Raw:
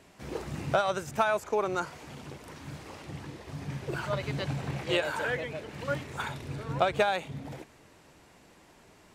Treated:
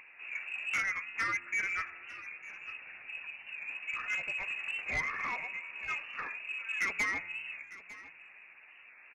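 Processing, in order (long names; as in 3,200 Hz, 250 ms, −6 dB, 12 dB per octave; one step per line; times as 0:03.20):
adaptive Wiener filter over 15 samples
flanger 0.61 Hz, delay 6.8 ms, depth 8.1 ms, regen −26%
upward compression, threshold −49 dBFS
tuned comb filter 87 Hz, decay 1.9 s, harmonics all, mix 50%
voice inversion scrambler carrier 2,700 Hz
soft clipping −33 dBFS, distortion −11 dB
0:01.37–0:03.78: low-shelf EQ 280 Hz +7.5 dB
single-tap delay 902 ms −17.5 dB
wow of a warped record 45 rpm, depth 100 cents
level +6.5 dB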